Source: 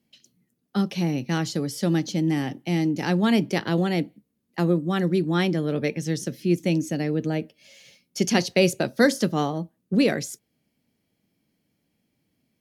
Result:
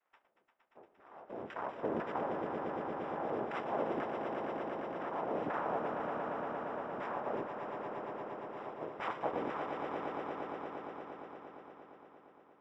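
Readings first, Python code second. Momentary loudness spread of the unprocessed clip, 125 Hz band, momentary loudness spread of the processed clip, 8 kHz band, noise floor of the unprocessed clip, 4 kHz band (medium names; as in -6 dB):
9 LU, -26.5 dB, 12 LU, under -35 dB, -75 dBFS, -25.0 dB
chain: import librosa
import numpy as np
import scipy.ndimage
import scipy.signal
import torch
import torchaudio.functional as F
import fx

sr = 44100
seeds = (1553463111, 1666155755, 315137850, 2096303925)

p1 = fx.peak_eq(x, sr, hz=2200.0, db=13.5, octaves=0.61)
p2 = np.clip(p1, -10.0 ** (-23.5 / 20.0), 10.0 ** (-23.5 / 20.0))
p3 = p2 * (1.0 - 0.97 / 2.0 + 0.97 / 2.0 * np.cos(2.0 * np.pi * 0.54 * (np.arange(len(p2)) / sr)))
p4 = fx.noise_vocoder(p3, sr, seeds[0], bands=2)
p5 = np.maximum(p4, 0.0)
p6 = fx.filter_lfo_bandpass(p5, sr, shape='saw_down', hz=2.0, low_hz=280.0, high_hz=1600.0, q=1.5)
p7 = fx.quant_float(p6, sr, bits=4)
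p8 = scipy.signal.savgol_filter(p7, 25, 4, mode='constant')
y = p8 + fx.echo_swell(p8, sr, ms=116, loudest=5, wet_db=-8.0, dry=0)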